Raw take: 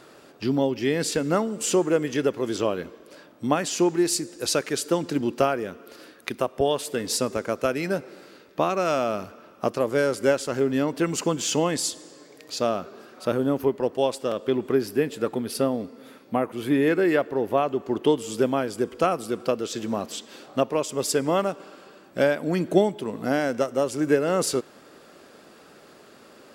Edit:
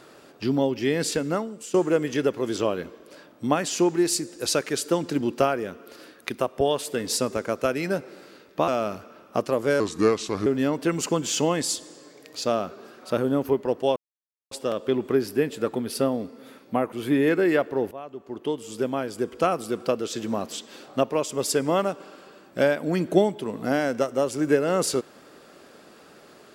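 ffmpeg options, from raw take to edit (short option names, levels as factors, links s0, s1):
-filter_complex "[0:a]asplit=7[s0][s1][s2][s3][s4][s5][s6];[s0]atrim=end=1.74,asetpts=PTS-STARTPTS,afade=t=out:st=1.11:d=0.63:silence=0.141254[s7];[s1]atrim=start=1.74:end=8.682,asetpts=PTS-STARTPTS,afade=t=in:d=0.004:c=hsin:silence=0.141254[s8];[s2]atrim=start=8.958:end=10.084[s9];[s3]atrim=start=10.08:end=10.61,asetpts=PTS-STARTPTS,asetrate=35280,aresample=44100,atrim=end_sample=29216,asetpts=PTS-STARTPTS[s10];[s4]atrim=start=10.606:end=14.11,asetpts=PTS-STARTPTS,afade=t=out:st=3.5:d=0.004:c=hsin,apad=pad_dur=0.55[s11];[s5]atrim=start=14.11:end=17.51,asetpts=PTS-STARTPTS,afade=t=in:d=0.004:c=hsin,afade=t=out:st=3.396:d=0.004:c=hsin:silence=0.11885[s12];[s6]atrim=start=17.51,asetpts=PTS-STARTPTS,afade=t=in:d=1.62:silence=0.11885[s13];[s7][s8]concat=n=2:v=0:a=1[s14];[s14][s9]acrossfade=d=0.004:c1=hsin:c2=hsin[s15];[s15][s10]acrossfade=d=0.004:c1=hsin:c2=hsin[s16];[s11][s12][s13]concat=n=3:v=0:a=1[s17];[s16][s17]acrossfade=d=0.004:c1=hsin:c2=hsin"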